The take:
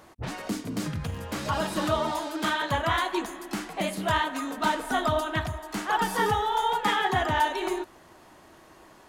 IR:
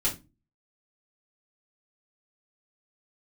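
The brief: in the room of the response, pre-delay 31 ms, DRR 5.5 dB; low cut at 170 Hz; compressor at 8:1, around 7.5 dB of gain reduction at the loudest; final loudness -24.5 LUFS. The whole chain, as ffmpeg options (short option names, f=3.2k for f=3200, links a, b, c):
-filter_complex "[0:a]highpass=170,acompressor=threshold=-28dB:ratio=8,asplit=2[a][b];[1:a]atrim=start_sample=2205,adelay=31[c];[b][c]afir=irnorm=-1:irlink=0,volume=-13dB[d];[a][d]amix=inputs=2:normalize=0,volume=7.5dB"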